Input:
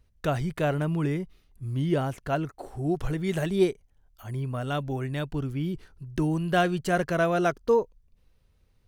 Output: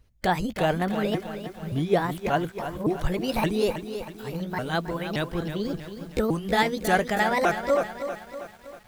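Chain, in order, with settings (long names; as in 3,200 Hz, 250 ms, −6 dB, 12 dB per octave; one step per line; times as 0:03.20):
pitch shifter swept by a sawtooth +7 semitones, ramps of 573 ms
harmonic and percussive parts rebalanced percussive +6 dB
feedback echo at a low word length 320 ms, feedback 55%, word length 8 bits, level −9.5 dB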